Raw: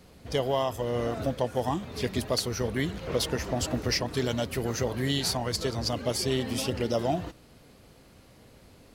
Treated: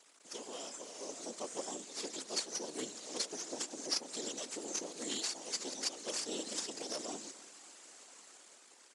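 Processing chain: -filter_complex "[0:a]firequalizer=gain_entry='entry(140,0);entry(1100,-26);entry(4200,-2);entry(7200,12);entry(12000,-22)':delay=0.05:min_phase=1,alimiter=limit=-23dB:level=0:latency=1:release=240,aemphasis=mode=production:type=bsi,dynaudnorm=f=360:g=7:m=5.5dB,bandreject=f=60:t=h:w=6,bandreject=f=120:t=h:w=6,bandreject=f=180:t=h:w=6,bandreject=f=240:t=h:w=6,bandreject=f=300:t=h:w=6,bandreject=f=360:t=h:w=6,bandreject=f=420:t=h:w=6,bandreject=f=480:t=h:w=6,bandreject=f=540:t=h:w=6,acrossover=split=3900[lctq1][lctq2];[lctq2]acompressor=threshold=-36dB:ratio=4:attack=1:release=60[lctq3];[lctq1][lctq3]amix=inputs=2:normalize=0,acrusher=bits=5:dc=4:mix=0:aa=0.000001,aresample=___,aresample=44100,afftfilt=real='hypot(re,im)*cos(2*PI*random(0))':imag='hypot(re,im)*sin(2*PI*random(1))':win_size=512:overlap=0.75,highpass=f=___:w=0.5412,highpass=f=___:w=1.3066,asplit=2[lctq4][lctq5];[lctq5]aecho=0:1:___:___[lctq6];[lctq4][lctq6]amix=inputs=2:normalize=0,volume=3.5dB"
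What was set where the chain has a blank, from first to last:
22050, 270, 270, 307, 0.0944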